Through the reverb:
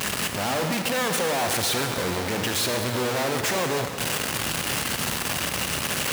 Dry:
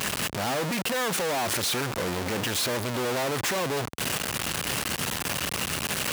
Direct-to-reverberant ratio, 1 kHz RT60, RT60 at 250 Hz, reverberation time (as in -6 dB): 5.0 dB, 2.5 s, 2.6 s, 2.5 s